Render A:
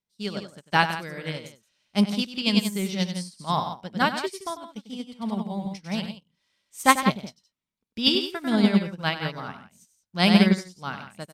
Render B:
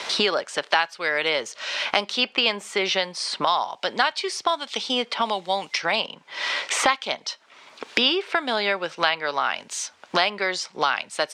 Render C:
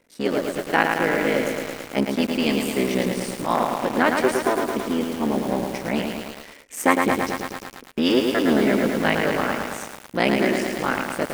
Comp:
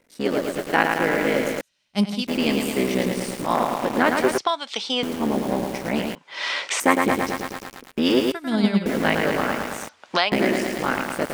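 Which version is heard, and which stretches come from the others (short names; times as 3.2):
C
1.61–2.27 from A
4.38–5.03 from B
6.15–6.8 from B
8.32–8.86 from A
9.89–10.32 from B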